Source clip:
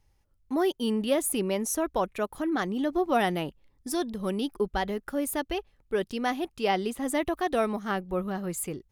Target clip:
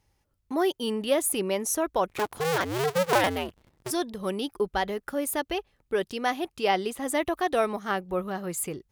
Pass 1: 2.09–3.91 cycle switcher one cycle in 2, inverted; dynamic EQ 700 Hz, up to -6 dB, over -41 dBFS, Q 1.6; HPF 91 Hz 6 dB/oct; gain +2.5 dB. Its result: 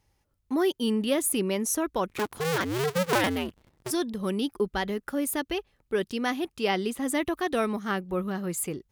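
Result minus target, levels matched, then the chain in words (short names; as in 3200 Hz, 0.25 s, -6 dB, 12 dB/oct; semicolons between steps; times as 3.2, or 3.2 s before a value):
250 Hz band +4.0 dB
2.09–3.91 cycle switcher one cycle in 2, inverted; dynamic EQ 230 Hz, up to -6 dB, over -41 dBFS, Q 1.6; HPF 91 Hz 6 dB/oct; gain +2.5 dB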